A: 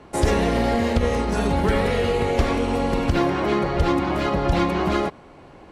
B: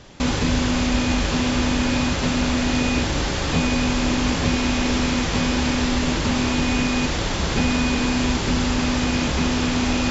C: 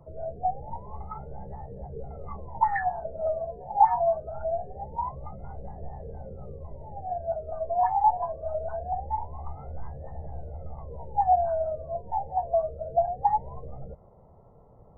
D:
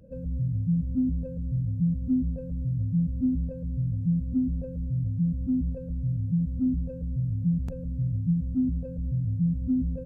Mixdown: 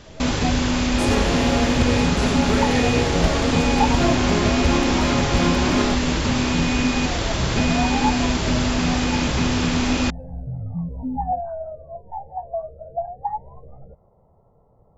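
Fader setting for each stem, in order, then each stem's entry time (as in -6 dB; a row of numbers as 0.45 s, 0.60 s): -2.0 dB, 0.0 dB, -3.0 dB, -2.5 dB; 0.85 s, 0.00 s, 0.00 s, 1.35 s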